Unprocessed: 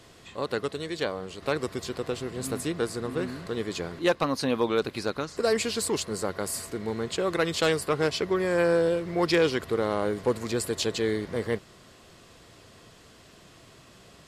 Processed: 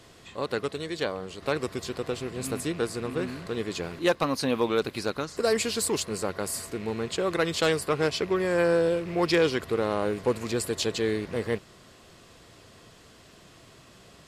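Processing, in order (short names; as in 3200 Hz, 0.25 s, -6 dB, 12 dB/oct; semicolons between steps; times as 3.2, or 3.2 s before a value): rattling part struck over -37 dBFS, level -37 dBFS; 3.83–6.06 high shelf 10000 Hz +6 dB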